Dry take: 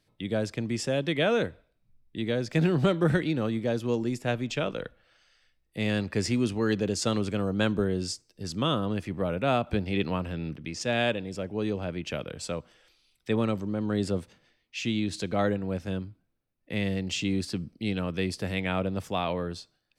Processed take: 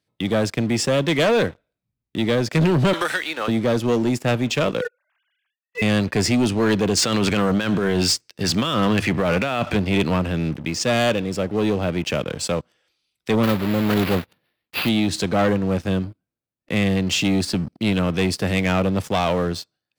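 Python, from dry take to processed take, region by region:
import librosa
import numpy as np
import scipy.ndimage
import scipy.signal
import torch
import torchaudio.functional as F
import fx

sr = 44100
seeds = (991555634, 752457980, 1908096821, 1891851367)

y = fx.chain(x, sr, fx.highpass(hz=1000.0, slope=12),
    fx.band_squash(depth_pct=100), at=(2.93, 3.48))
y = fx.chain(y, sr, fx.sine_speech(),
    fx.highpass(hz=560.0, slope=12), at=(4.81, 5.82))
y = fx.chain(y, sr, fx.peak_eq(hz=2200.0, db=9.0, octaves=2.0),
    fx.hum_notches(base_hz=50, count=2),
    fx.over_compress(threshold_db=-29.0, ratio=-1.0), at=(6.97, 9.75))
y = fx.chain(y, sr, fx.block_float(bits=3),
    fx.resample_bad(factor=6, down='none', up='hold'),
    fx.band_shelf(hz=7200.0, db=-13.5, octaves=1.1), at=(13.43, 14.89))
y = scipy.signal.sosfilt(scipy.signal.butter(2, 76.0, 'highpass', fs=sr, output='sos'), y)
y = fx.leveller(y, sr, passes=3)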